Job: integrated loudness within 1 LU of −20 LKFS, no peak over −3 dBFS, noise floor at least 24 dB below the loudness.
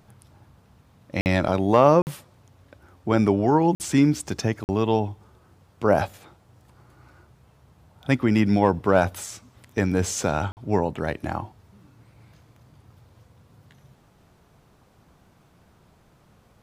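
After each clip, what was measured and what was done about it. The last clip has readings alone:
number of dropouts 5; longest dropout 49 ms; integrated loudness −22.5 LKFS; sample peak −3.0 dBFS; target loudness −20.0 LKFS
→ repair the gap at 0:01.21/0:02.02/0:03.75/0:04.64/0:10.52, 49 ms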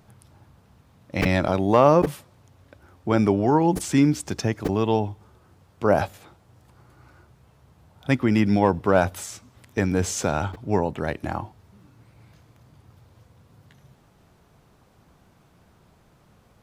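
number of dropouts 0; integrated loudness −22.5 LKFS; sample peak −3.0 dBFS; target loudness −20.0 LKFS
→ level +2.5 dB
brickwall limiter −3 dBFS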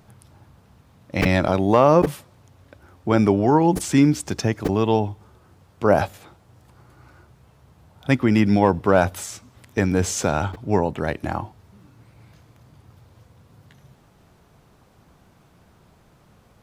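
integrated loudness −20.5 LKFS; sample peak −3.0 dBFS; background noise floor −56 dBFS

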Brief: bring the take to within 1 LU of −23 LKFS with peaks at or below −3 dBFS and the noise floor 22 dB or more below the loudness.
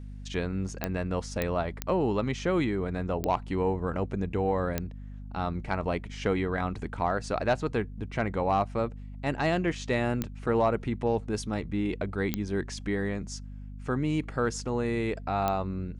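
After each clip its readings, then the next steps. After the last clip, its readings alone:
number of clicks 8; mains hum 50 Hz; hum harmonics up to 250 Hz; level of the hum −39 dBFS; integrated loudness −30.0 LKFS; sample peak −10.0 dBFS; target loudness −23.0 LKFS
→ click removal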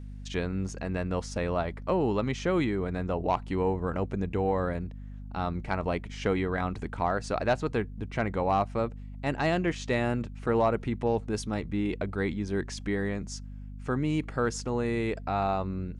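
number of clicks 0; mains hum 50 Hz; hum harmonics up to 250 Hz; level of the hum −39 dBFS
→ hum removal 50 Hz, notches 5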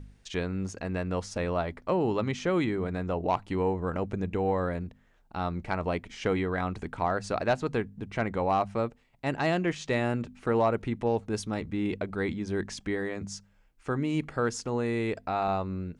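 mains hum none found; integrated loudness −30.5 LKFS; sample peak −14.5 dBFS; target loudness −23.0 LKFS
→ level +7.5 dB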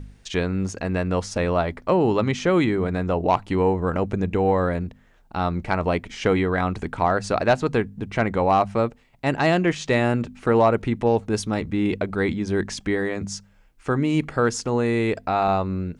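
integrated loudness −23.0 LKFS; sample peak −7.0 dBFS; background noise floor −55 dBFS

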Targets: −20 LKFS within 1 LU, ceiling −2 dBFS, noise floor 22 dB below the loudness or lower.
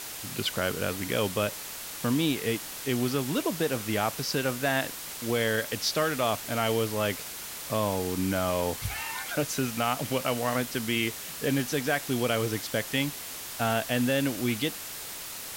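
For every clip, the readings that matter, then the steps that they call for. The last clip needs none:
background noise floor −39 dBFS; target noise floor −51 dBFS; integrated loudness −29.0 LKFS; sample peak −12.5 dBFS; target loudness −20.0 LKFS
→ broadband denoise 12 dB, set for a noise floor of −39 dBFS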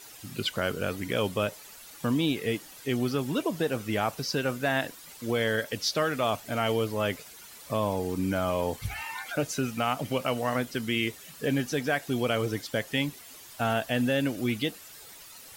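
background noise floor −48 dBFS; target noise floor −52 dBFS
→ broadband denoise 6 dB, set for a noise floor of −48 dBFS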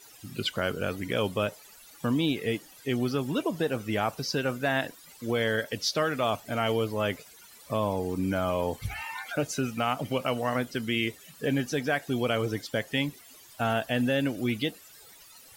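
background noise floor −52 dBFS; integrated loudness −29.5 LKFS; sample peak −13.0 dBFS; target loudness −20.0 LKFS
→ level +9.5 dB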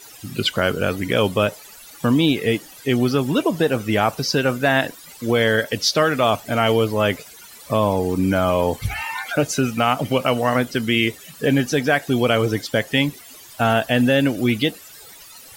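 integrated loudness −20.0 LKFS; sample peak −3.5 dBFS; background noise floor −43 dBFS

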